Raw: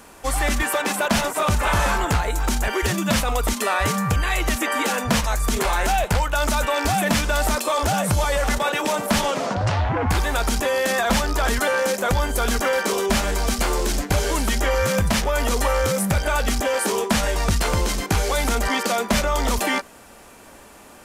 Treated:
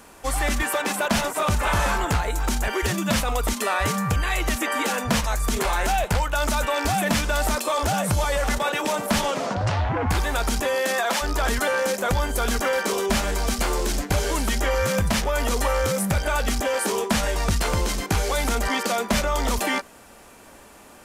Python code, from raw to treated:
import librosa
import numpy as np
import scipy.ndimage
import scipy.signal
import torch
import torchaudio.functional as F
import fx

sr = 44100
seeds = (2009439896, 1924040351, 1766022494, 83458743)

y = fx.highpass(x, sr, hz=fx.line((10.75, 160.0), (11.21, 490.0)), slope=12, at=(10.75, 11.21), fade=0.02)
y = y * 10.0 ** (-2.0 / 20.0)